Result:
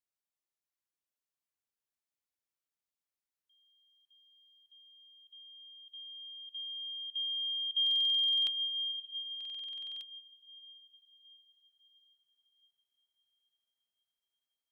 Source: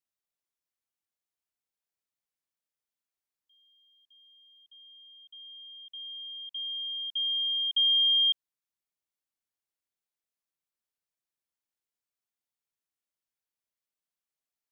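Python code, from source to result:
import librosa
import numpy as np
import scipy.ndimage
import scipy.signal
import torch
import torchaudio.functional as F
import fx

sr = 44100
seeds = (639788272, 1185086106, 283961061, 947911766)

y = fx.echo_diffused(x, sr, ms=732, feedback_pct=45, wet_db=-6.0)
y = fx.buffer_glitch(y, sr, at_s=(7.82, 9.36), block=2048, repeats=13)
y = y * librosa.db_to_amplitude(-5.0)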